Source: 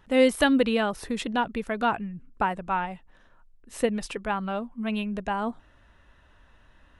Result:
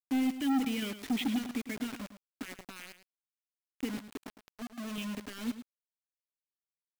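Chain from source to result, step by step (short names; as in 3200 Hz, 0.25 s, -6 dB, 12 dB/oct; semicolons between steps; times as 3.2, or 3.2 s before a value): bell 180 Hz -6 dB 0.33 oct; 0.82–1.38 sample leveller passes 2; limiter -19.5 dBFS, peak gain reduction 10.5 dB; vowel filter i; 3.97–4.98 fixed phaser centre 580 Hz, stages 6; bit-crush 8-bit; hard clip -32 dBFS, distortion -6 dB; echo 0.107 s -12 dB; gain +6 dB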